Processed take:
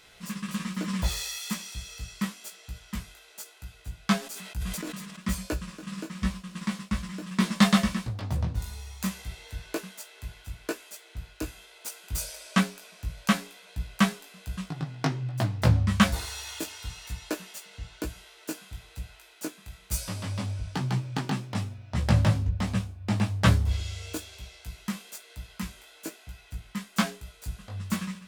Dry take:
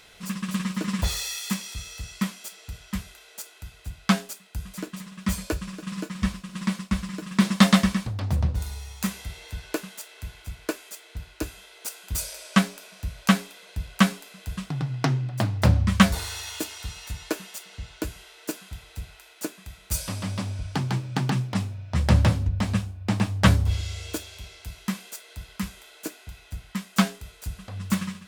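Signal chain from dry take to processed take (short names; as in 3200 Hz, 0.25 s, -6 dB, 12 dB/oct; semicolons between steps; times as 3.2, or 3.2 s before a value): chorus 1.1 Hz, delay 16.5 ms, depth 2.8 ms; 4.19–5.19 sustainer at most 33 dB/s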